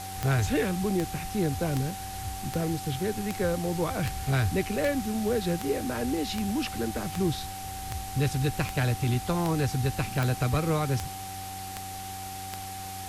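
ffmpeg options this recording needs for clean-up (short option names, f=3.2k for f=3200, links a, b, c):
-af "adeclick=t=4,bandreject=f=94.8:t=h:w=4,bandreject=f=189.6:t=h:w=4,bandreject=f=284.4:t=h:w=4,bandreject=f=379.2:t=h:w=4,bandreject=f=770:w=30,afwtdn=0.0089"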